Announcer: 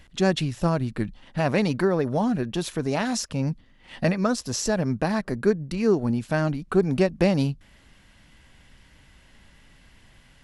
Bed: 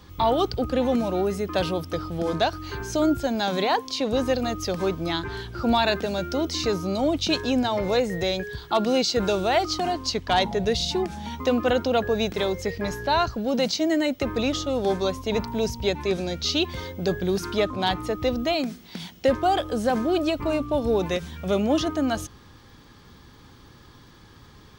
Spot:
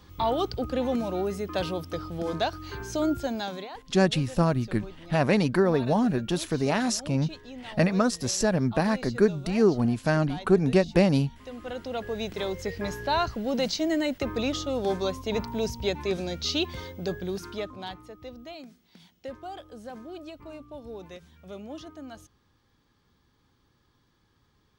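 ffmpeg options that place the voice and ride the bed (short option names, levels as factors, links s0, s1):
-filter_complex "[0:a]adelay=3750,volume=1[s0];[1:a]volume=3.76,afade=t=out:st=3.3:d=0.4:silence=0.177828,afade=t=in:st=11.51:d=1.3:silence=0.158489,afade=t=out:st=16.6:d=1.47:silence=0.188365[s1];[s0][s1]amix=inputs=2:normalize=0"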